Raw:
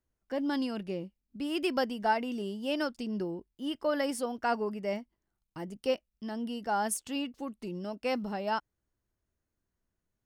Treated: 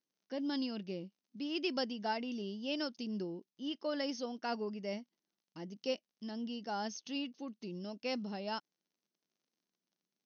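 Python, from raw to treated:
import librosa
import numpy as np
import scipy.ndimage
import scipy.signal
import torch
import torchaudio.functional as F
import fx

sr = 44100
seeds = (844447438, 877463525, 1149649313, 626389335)

y = fx.peak_eq(x, sr, hz=4400.0, db=8.5, octaves=2.6)
y = fx.dmg_crackle(y, sr, seeds[0], per_s=51.0, level_db=-56.0)
y = fx.brickwall_bandpass(y, sr, low_hz=150.0, high_hz=6500.0)
y = fx.peak_eq(y, sr, hz=1500.0, db=-9.5, octaves=2.8)
y = y * 10.0 ** (-3.5 / 20.0)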